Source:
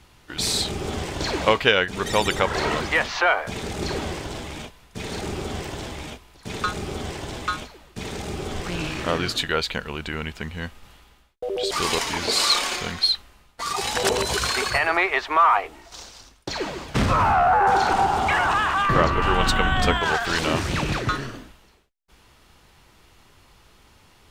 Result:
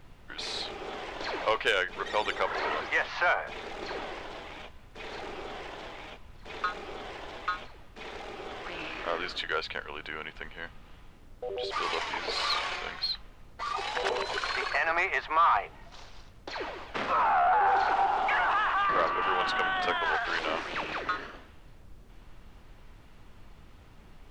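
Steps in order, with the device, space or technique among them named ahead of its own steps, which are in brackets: aircraft cabin announcement (band-pass 490–3100 Hz; saturation -11 dBFS, distortion -20 dB; brown noise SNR 17 dB); trim -4.5 dB

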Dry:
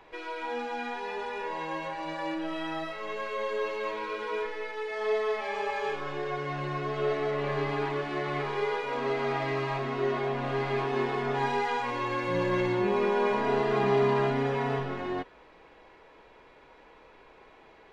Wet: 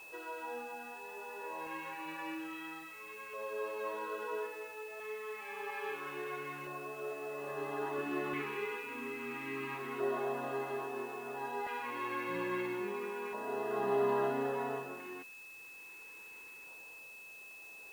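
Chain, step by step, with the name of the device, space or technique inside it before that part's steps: shortwave radio (band-pass 270–2900 Hz; tremolo 0.49 Hz, depth 59%; LFO notch square 0.3 Hz 630–2400 Hz; whistle 2.6 kHz -45 dBFS; white noise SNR 22 dB); 7.98–9.75 s: fifteen-band graphic EQ 100 Hz +5 dB, 250 Hz +11 dB, 630 Hz -6 dB, 2.5 kHz +4 dB; trim -4.5 dB

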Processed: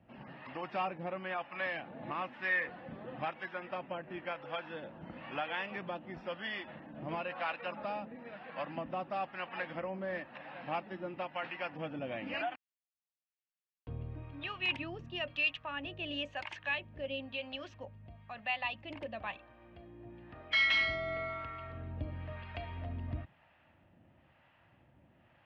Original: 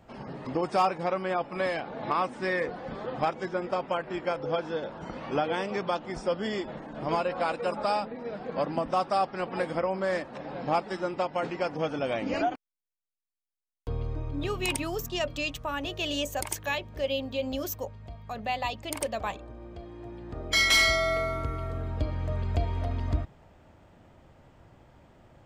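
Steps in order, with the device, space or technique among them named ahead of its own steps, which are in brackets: guitar amplifier with harmonic tremolo (harmonic tremolo 1 Hz, depth 70%, crossover 640 Hz; saturation -18 dBFS, distortion -23 dB; cabinet simulation 79–3700 Hz, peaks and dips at 430 Hz -9 dB, 1.8 kHz +7 dB, 2.7 kHz +9 dB); trim -5.5 dB

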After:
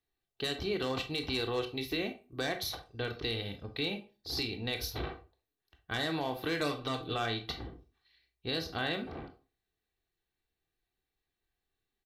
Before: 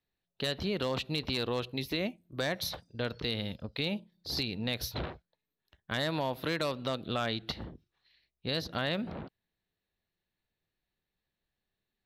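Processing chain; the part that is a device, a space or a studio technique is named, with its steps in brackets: microphone above a desk (comb 2.6 ms, depth 55%; reverberation RT60 0.30 s, pre-delay 20 ms, DRR 6 dB); 6.58–7.14 s: comb 6.6 ms, depth 60%; trim -2.5 dB

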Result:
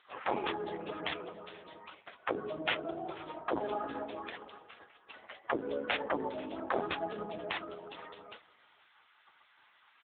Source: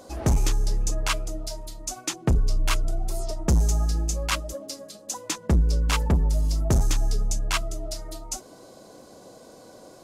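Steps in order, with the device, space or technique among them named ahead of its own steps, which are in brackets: 3.79–5.22 s: hum notches 50/100/150/200 Hz; spectral gate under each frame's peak -20 dB weak; satellite phone (band-pass 340–3200 Hz; delay 483 ms -20.5 dB; trim +6.5 dB; AMR-NB 6.7 kbps 8 kHz)

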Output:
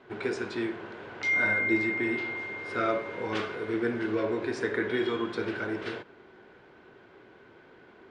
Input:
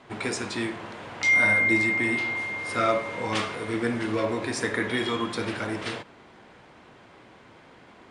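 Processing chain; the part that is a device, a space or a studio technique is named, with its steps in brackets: inside a cardboard box (low-pass 4.5 kHz 12 dB/octave; small resonant body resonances 390/1500 Hz, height 11 dB, ringing for 30 ms); trim -6.5 dB

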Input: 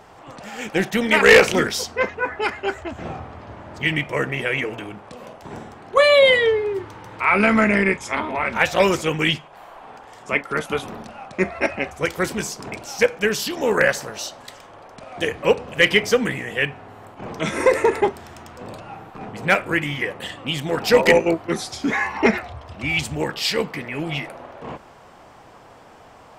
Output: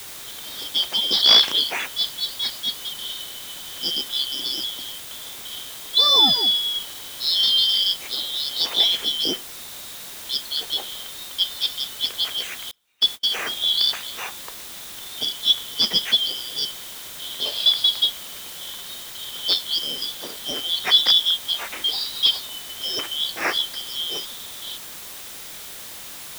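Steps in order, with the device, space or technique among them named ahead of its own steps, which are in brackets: split-band scrambled radio (four frequency bands reordered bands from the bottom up 3412; band-pass 330–3300 Hz; white noise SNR 13 dB); 12.71–13.33 s: gate -27 dBFS, range -35 dB; trim +1.5 dB

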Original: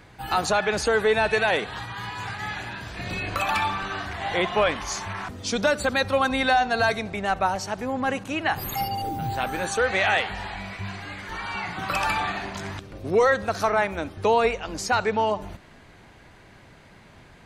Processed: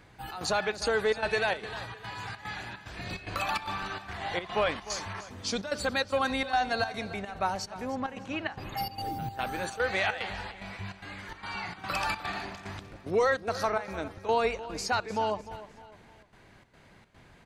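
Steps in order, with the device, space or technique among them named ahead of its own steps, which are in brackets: 7.94–8.76 s: low-pass 7.2 kHz -> 3 kHz 12 dB/octave; trance gate with a delay (trance gate "xxx.xxx." 147 bpm -12 dB; feedback delay 302 ms, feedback 38%, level -15 dB); dynamic bell 4.6 kHz, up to +6 dB, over -50 dBFS, Q 4; trim -6 dB

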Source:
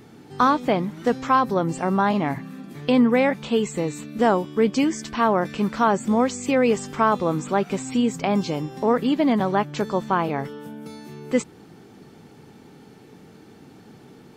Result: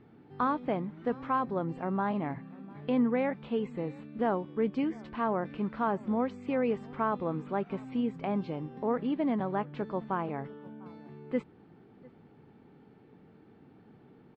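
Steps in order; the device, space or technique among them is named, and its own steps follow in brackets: shout across a valley (distance through air 430 m; echo from a far wall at 120 m, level -23 dB); trim -9 dB

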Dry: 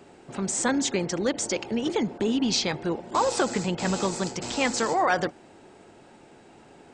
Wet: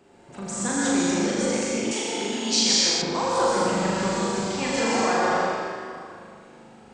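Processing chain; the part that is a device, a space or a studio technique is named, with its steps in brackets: tunnel (flutter echo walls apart 6.8 m, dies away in 0.95 s; reverberation RT60 2.3 s, pre-delay 111 ms, DRR -4.5 dB); 1.91–3.02 s: RIAA curve recording; trim -7 dB

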